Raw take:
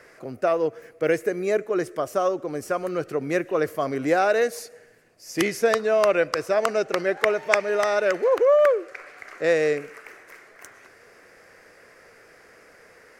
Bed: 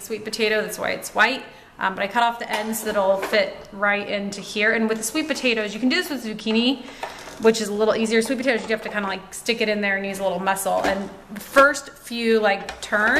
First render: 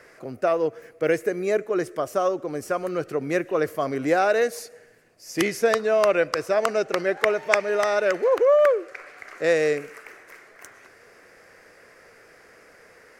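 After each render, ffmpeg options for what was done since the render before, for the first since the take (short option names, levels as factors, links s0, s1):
-filter_complex "[0:a]asettb=1/sr,asplit=3[s0][s1][s2];[s0]atrim=end=9.364[s3];[s1]atrim=start=9.36:end=10.04,asetpts=PTS-STARTPTS,afade=t=in:d=0.004:c=qsin,afade=t=out:st=0.676:d=0.004:c=qsin,highshelf=f=5900:g=4.5[s4];[s2]atrim=start=10.036[s5];[s3][s4]acrossfade=d=0.004:c1=hsin:c2=qsin[s6];[s6][s5]acrossfade=d=0.004:c1=qsin:c2=hsin"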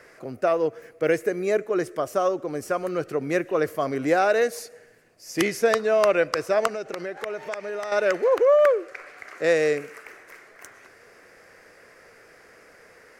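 -filter_complex "[0:a]asettb=1/sr,asplit=3[s0][s1][s2];[s0]atrim=end=6.674[s3];[s1]atrim=start=6.67:end=7.92,asetpts=PTS-STARTPTS,afade=t=in:d=0.004:c=qsin,afade=t=out:st=1.246:d=0.004:c=qsin,acompressor=threshold=0.0355:ratio=4:attack=3.2:release=140:knee=1:detection=peak[s4];[s2]atrim=start=7.916[s5];[s3][s4]acrossfade=d=0.004:c1=hsin:c2=qsin[s6];[s6][s5]acrossfade=d=0.004:c1=qsin:c2=hsin,asettb=1/sr,asplit=3[s7][s8][s9];[s7]atrim=end=9.264[s10];[s8]atrim=start=9.26:end=10.06,asetpts=PTS-STARTPTS,afade=t=in:d=0.004:c=qsin,afade=t=out:st=0.796:d=0.004:c=qsin,highpass=76[s11];[s9]atrim=start=10.056[s12];[s10][s11]acrossfade=d=0.004:c1=hsin:c2=qsin[s13];[s13][s12]acrossfade=d=0.004:c1=qsin:c2=hsin"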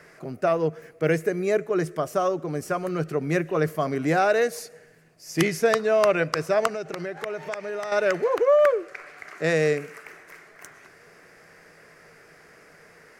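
-af "equalizer=f=160:w=5.3:g=13,bandreject=f=520:w=12"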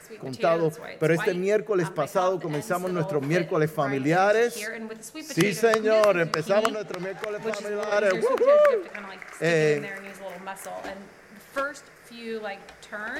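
-filter_complex "[1:a]volume=0.178[s0];[0:a][s0]amix=inputs=2:normalize=0"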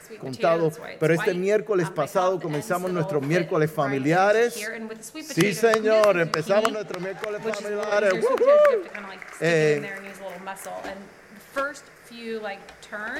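-af "volume=1.19"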